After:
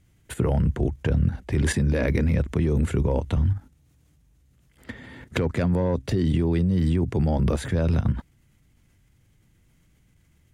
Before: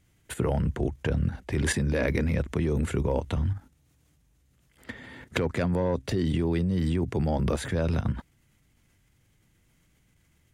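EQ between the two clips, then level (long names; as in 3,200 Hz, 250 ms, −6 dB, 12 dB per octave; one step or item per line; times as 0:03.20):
low-shelf EQ 280 Hz +6 dB
0.0 dB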